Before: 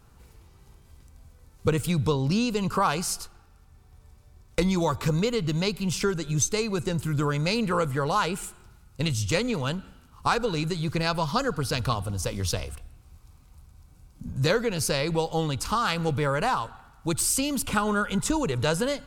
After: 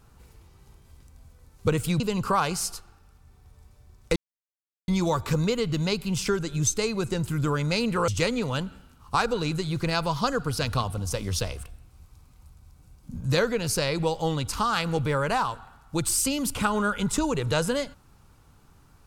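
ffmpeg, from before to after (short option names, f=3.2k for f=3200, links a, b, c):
-filter_complex "[0:a]asplit=4[a][b][c][d];[a]atrim=end=2.002[e];[b]atrim=start=2.468:end=4.63,asetpts=PTS-STARTPTS,afade=t=out:st=2.158:d=0.004:c=hsin,apad=pad_dur=0.72[f];[c]atrim=start=4.63:end=7.832,asetpts=PTS-STARTPTS,afade=t=in:d=0.004:c=hsin[g];[d]atrim=start=9.198[h];[f][g]concat=n=2:v=0:a=1[i];[e][i]acrossfade=d=0.004:c1=hsin:c2=hsin[j];[j][h]acrossfade=d=0.004:c1=hsin:c2=hsin"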